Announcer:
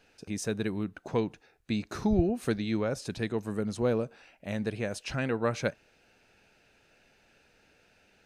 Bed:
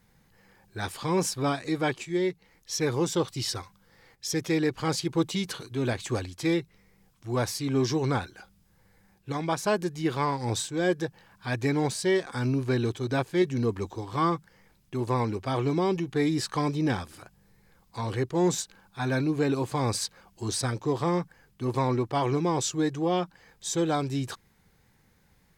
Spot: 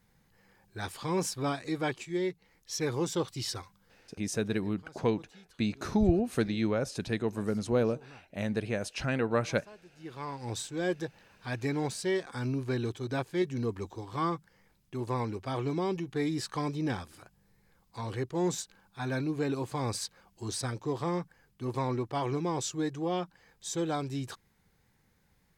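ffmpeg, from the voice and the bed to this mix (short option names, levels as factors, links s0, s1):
-filter_complex "[0:a]adelay=3900,volume=1.06[s0];[1:a]volume=6.68,afade=t=out:st=3.88:d=0.35:silence=0.0794328,afade=t=in:st=9.91:d=0.79:silence=0.0891251[s1];[s0][s1]amix=inputs=2:normalize=0"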